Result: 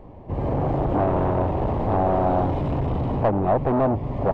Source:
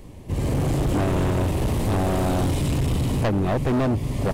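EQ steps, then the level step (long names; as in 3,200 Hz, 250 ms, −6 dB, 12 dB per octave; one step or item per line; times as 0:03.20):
head-to-tape spacing loss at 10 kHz 38 dB
parametric band 790 Hz +13 dB 1.6 octaves
−2.5 dB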